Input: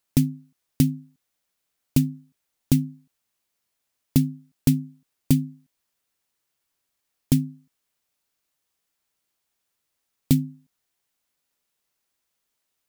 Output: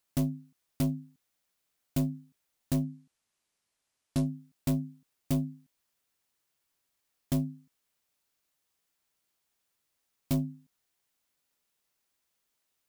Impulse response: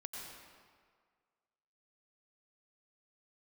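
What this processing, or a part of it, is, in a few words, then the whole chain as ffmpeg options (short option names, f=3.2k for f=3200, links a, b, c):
saturation between pre-emphasis and de-emphasis: -filter_complex "[0:a]highshelf=f=3k:g=8.5,asoftclip=type=tanh:threshold=-21dB,highshelf=f=3k:g=-8.5,asettb=1/sr,asplit=3[a][b][c];[a]atrim=end=2.834[d];[b]atrim=start=2.83:end=4.26,asetpts=PTS-STARTPTS,afade=t=in:d=0.004:c=qsin,afade=t=out:st=1.426:d=0.004:c=qsin,lowpass=f=11k:w=0.5412,lowpass=f=11k:w=1.3066[e];[c]atrim=start=4.256[f];[d][e]acrossfade=d=0.004:c1=hsin:c2=qsin[g];[g][f]acrossfade=d=0.004:c1=qsin:c2=hsin,volume=-1.5dB"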